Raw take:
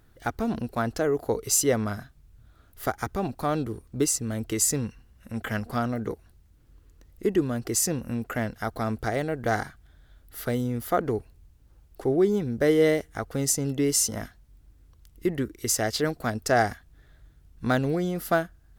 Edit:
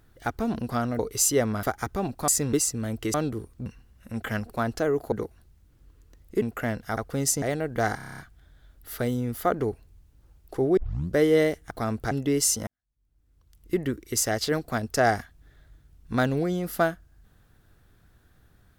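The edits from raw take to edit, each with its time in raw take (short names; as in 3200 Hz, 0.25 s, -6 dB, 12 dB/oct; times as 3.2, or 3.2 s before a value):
0.69–1.31 swap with 5.7–6
1.95–2.83 cut
3.48–4 swap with 4.61–4.86
7.3–8.15 cut
8.7–9.1 swap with 13.18–13.63
9.65 stutter 0.03 s, 8 plays
12.24 tape start 0.39 s
14.19–15.26 fade in quadratic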